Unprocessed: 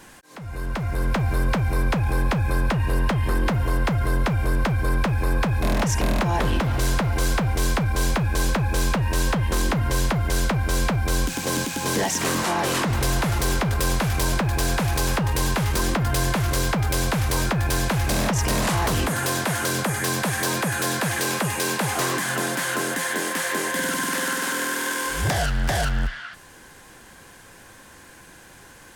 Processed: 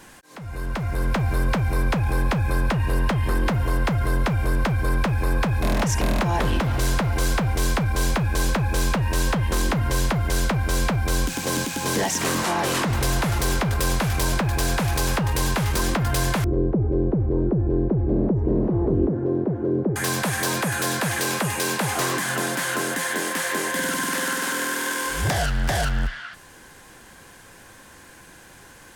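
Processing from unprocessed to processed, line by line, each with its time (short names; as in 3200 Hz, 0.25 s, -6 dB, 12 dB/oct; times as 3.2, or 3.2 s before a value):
16.44–19.96 synth low-pass 370 Hz, resonance Q 3.5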